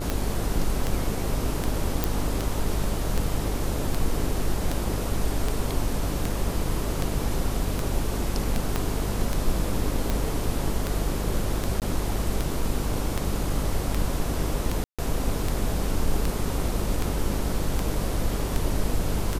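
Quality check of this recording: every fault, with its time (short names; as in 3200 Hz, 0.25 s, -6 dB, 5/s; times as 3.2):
buzz 50 Hz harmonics 27 -30 dBFS
tick 78 rpm
2.04 pop
8.76 pop -10 dBFS
11.8–11.82 gap 18 ms
14.84–14.99 gap 0.146 s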